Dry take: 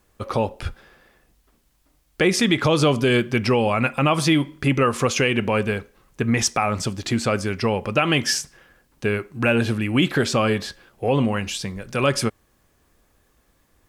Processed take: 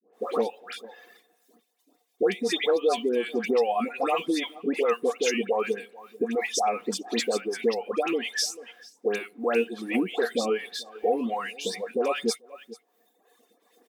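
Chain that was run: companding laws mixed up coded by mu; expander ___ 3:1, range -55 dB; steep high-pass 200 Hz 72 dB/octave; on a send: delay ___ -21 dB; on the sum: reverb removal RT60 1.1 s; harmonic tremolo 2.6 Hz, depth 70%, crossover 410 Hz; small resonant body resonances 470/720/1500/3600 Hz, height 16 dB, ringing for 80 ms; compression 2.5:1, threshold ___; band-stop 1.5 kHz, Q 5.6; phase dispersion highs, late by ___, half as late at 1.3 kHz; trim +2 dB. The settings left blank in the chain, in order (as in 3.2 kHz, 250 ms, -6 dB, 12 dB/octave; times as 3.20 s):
-48 dBFS, 438 ms, -27 dBFS, 128 ms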